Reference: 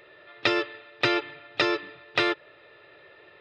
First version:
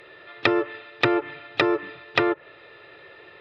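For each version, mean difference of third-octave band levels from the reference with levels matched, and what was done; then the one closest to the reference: 2.5 dB: notch 600 Hz, Q 16; treble ducked by the level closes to 1100 Hz, closed at -21.5 dBFS; gain +5.5 dB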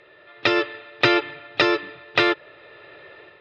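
1.0 dB: Bessel low-pass 5700 Hz, order 2; AGC gain up to 7 dB; gain +1 dB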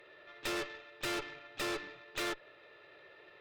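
7.0 dB: low shelf 81 Hz -11 dB; tube stage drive 34 dB, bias 0.8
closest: second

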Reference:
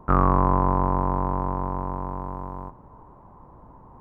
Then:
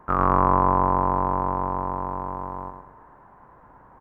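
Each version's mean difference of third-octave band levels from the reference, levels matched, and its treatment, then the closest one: 2.5 dB: low shelf 350 Hz -9.5 dB; band noise 700–1700 Hz -62 dBFS; on a send: feedback echo 0.108 s, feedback 42%, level -6.5 dB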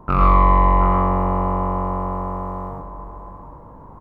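3.5 dB: echo 0.723 s -11.5 dB; soft clip -10.5 dBFS, distortion -14 dB; non-linear reverb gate 0.14 s rising, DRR -2 dB; gain +3 dB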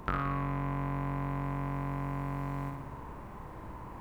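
10.0 dB: resonant high shelf 1500 Hz +14 dB, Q 1.5; compressor 6:1, threshold -34 dBFS, peak gain reduction 19.5 dB; flutter echo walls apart 9.9 m, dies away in 0.92 s; gain +2.5 dB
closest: first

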